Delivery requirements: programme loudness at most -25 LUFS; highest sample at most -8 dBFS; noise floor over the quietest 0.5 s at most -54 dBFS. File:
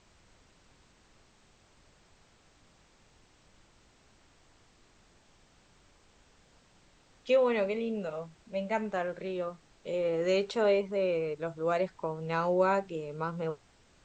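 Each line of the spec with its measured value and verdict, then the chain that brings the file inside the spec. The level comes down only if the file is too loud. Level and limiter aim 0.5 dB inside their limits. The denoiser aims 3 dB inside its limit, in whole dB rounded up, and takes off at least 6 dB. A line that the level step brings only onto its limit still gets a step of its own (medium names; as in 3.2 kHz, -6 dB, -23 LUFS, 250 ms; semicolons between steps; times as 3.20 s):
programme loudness -31.0 LUFS: pass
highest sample -15.5 dBFS: pass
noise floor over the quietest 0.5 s -63 dBFS: pass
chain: none needed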